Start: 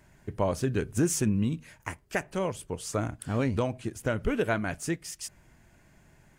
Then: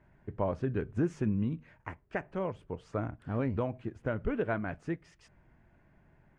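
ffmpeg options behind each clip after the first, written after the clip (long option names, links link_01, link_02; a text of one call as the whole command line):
ffmpeg -i in.wav -af "lowpass=1800,volume=-4dB" out.wav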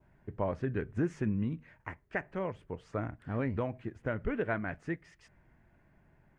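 ffmpeg -i in.wav -af "adynamicequalizer=threshold=0.00126:dfrequency=1900:dqfactor=2.6:tfrequency=1900:tqfactor=2.6:attack=5:release=100:ratio=0.375:range=3.5:mode=boostabove:tftype=bell,volume=-1.5dB" out.wav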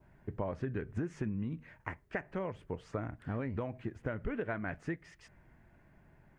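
ffmpeg -i in.wav -af "acompressor=threshold=-35dB:ratio=6,volume=2.5dB" out.wav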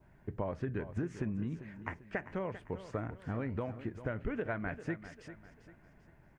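ffmpeg -i in.wav -af "aecho=1:1:395|790|1185|1580:0.224|0.0851|0.0323|0.0123" out.wav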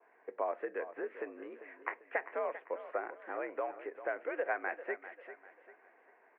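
ffmpeg -i in.wav -af "highpass=frequency=360:width_type=q:width=0.5412,highpass=frequency=360:width_type=q:width=1.307,lowpass=frequency=2400:width_type=q:width=0.5176,lowpass=frequency=2400:width_type=q:width=0.7071,lowpass=frequency=2400:width_type=q:width=1.932,afreqshift=68,volume=3.5dB" out.wav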